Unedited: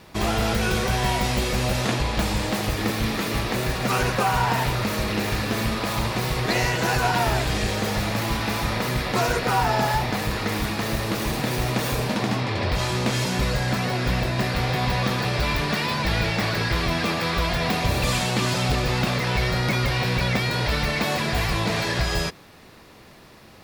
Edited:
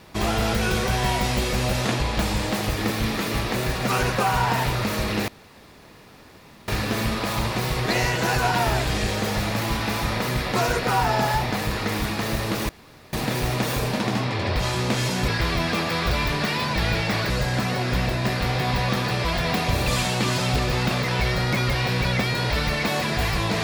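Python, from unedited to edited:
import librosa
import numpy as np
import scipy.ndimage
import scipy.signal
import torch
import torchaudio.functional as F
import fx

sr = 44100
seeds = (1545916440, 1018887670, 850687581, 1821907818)

y = fx.edit(x, sr, fx.insert_room_tone(at_s=5.28, length_s=1.4),
    fx.insert_room_tone(at_s=11.29, length_s=0.44),
    fx.swap(start_s=13.44, length_s=1.95, other_s=16.59, other_length_s=0.82), tone=tone)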